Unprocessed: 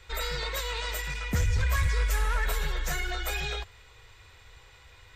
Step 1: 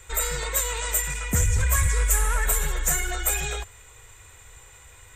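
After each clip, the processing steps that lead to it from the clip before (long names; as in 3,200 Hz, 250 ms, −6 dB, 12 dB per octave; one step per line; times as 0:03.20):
high shelf with overshoot 6,100 Hz +9 dB, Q 3
level +3.5 dB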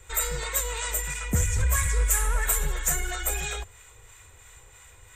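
two-band tremolo in antiphase 3 Hz, depth 50%, crossover 780 Hz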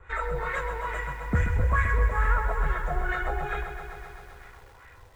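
auto-filter low-pass sine 2.3 Hz 700–1,800 Hz
feedback echo at a low word length 130 ms, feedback 80%, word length 9 bits, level −9 dB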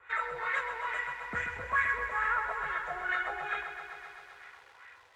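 resonant band-pass 2,400 Hz, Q 0.7
level +1.5 dB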